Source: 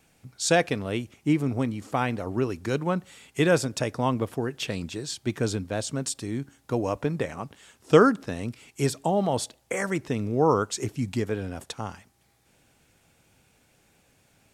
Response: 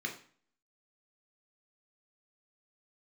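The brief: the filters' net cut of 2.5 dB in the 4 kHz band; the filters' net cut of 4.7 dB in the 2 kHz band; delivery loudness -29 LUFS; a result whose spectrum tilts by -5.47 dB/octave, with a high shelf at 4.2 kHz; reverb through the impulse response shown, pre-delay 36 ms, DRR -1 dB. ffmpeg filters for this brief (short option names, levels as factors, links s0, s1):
-filter_complex "[0:a]equalizer=f=2000:t=o:g=-6.5,equalizer=f=4000:t=o:g=-6,highshelf=f=4200:g=7,asplit=2[s0][s1];[1:a]atrim=start_sample=2205,adelay=36[s2];[s1][s2]afir=irnorm=-1:irlink=0,volume=0.794[s3];[s0][s3]amix=inputs=2:normalize=0,volume=0.531"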